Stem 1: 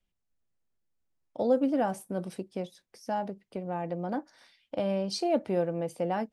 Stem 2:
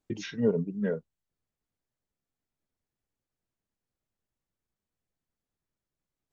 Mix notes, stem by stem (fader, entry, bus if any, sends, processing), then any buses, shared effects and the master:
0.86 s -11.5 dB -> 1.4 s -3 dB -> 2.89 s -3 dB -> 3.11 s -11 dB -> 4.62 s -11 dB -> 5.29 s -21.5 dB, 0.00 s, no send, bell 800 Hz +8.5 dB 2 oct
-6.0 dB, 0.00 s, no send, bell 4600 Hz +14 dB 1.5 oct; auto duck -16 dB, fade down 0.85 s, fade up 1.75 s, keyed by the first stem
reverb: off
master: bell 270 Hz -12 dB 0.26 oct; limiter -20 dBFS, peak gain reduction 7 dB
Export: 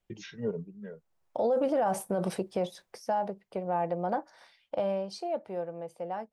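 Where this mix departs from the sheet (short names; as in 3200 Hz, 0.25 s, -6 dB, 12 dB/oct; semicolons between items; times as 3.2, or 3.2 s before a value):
stem 1 -11.5 dB -> -2.0 dB; stem 2: missing bell 4600 Hz +14 dB 1.5 oct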